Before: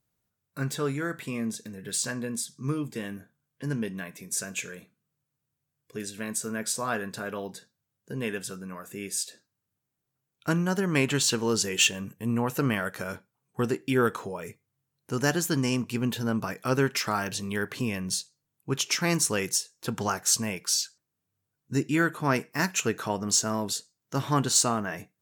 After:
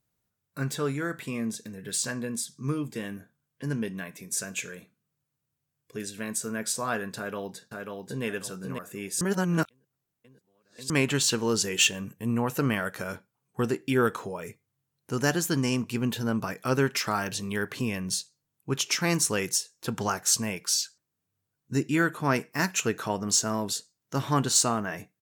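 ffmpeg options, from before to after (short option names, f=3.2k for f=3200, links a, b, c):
-filter_complex "[0:a]asplit=2[a][b];[b]afade=t=in:st=7.17:d=0.01,afade=t=out:st=8.24:d=0.01,aecho=0:1:540|1080|1620|2160:0.668344|0.200503|0.060151|0.0180453[c];[a][c]amix=inputs=2:normalize=0,asplit=3[d][e][f];[d]atrim=end=9.212[g];[e]atrim=start=9.208:end=10.902,asetpts=PTS-STARTPTS,areverse[h];[f]atrim=start=10.898[i];[g][h]acrossfade=d=0.004:c1=hsin:c2=hsin[j];[j][i]acrossfade=d=0.004:c1=hsin:c2=hsin"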